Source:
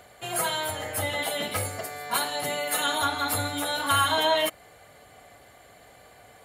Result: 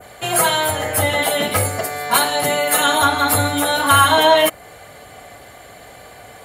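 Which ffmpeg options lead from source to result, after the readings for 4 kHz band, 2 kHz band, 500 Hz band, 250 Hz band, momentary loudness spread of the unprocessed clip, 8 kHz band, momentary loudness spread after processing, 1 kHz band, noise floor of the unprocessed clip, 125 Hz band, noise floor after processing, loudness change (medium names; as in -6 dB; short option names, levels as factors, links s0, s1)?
+8.5 dB, +10.5 dB, +11.5 dB, +11.5 dB, 8 LU, +11.0 dB, 7 LU, +11.0 dB, -53 dBFS, +11.5 dB, -42 dBFS, +10.5 dB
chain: -af "acontrast=75,adynamicequalizer=threshold=0.0178:dfrequency=4000:dqfactor=0.7:tfrequency=4000:tqfactor=0.7:attack=5:release=100:ratio=0.375:range=2:mode=cutabove:tftype=bell,volume=1.78"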